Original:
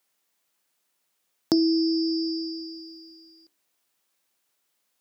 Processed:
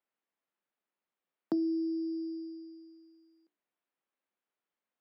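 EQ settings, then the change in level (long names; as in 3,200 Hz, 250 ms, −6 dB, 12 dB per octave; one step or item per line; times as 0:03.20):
Butterworth high-pass 160 Hz
high-frequency loss of the air 490 metres
−8.0 dB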